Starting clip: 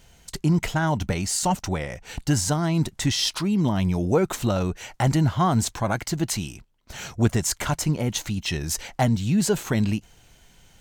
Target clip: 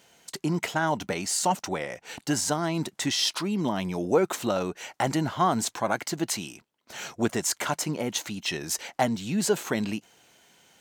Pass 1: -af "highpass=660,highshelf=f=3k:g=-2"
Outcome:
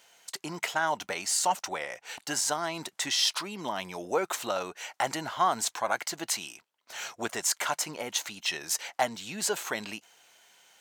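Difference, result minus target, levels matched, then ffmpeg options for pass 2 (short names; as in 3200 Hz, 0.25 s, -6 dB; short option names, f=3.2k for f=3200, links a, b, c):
250 Hz band -10.0 dB
-af "highpass=270,highshelf=f=3k:g=-2"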